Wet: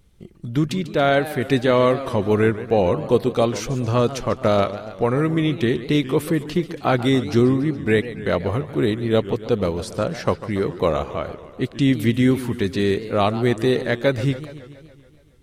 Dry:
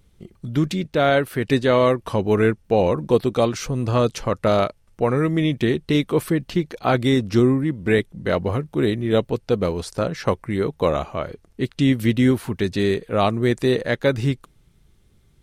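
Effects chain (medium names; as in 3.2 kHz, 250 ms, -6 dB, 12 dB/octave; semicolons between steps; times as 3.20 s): modulated delay 141 ms, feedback 63%, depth 208 cents, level -14.5 dB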